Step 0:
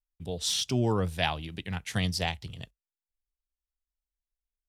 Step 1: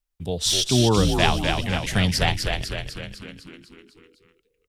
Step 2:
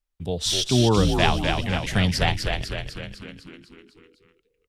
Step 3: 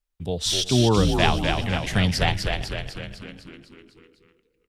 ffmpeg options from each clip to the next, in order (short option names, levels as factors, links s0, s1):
-filter_complex "[0:a]asplit=9[s0][s1][s2][s3][s4][s5][s6][s7][s8];[s1]adelay=251,afreqshift=-72,volume=0.596[s9];[s2]adelay=502,afreqshift=-144,volume=0.347[s10];[s3]adelay=753,afreqshift=-216,volume=0.2[s11];[s4]adelay=1004,afreqshift=-288,volume=0.116[s12];[s5]adelay=1255,afreqshift=-360,volume=0.0676[s13];[s6]adelay=1506,afreqshift=-432,volume=0.0389[s14];[s7]adelay=1757,afreqshift=-504,volume=0.0226[s15];[s8]adelay=2008,afreqshift=-576,volume=0.0132[s16];[s0][s9][s10][s11][s12][s13][s14][s15][s16]amix=inputs=9:normalize=0,volume=2.37"
-af "highshelf=f=5800:g=-6.5"
-filter_complex "[0:a]asplit=2[s0][s1];[s1]adelay=365,lowpass=f=1600:p=1,volume=0.106,asplit=2[s2][s3];[s3]adelay=365,lowpass=f=1600:p=1,volume=0.36,asplit=2[s4][s5];[s5]adelay=365,lowpass=f=1600:p=1,volume=0.36[s6];[s0][s2][s4][s6]amix=inputs=4:normalize=0"